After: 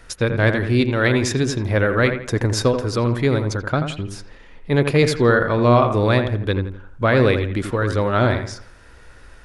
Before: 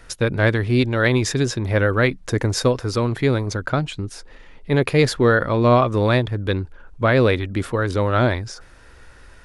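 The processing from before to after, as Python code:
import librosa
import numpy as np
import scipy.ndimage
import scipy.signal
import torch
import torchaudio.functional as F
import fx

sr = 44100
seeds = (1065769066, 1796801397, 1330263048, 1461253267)

y = fx.echo_wet_lowpass(x, sr, ms=84, feedback_pct=33, hz=2500.0, wet_db=-7.5)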